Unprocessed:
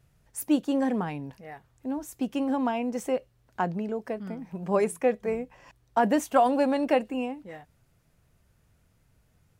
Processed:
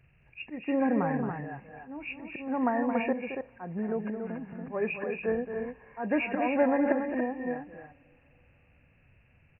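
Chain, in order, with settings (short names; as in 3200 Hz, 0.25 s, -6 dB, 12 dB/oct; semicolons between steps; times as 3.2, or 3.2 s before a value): nonlinear frequency compression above 1600 Hz 4:1; auto swell 0.252 s; on a send: loudspeakers at several distances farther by 76 m -9 dB, 97 m -6 dB; on the sum: two-slope reverb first 0.2 s, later 4.1 s, from -22 dB, DRR 17 dB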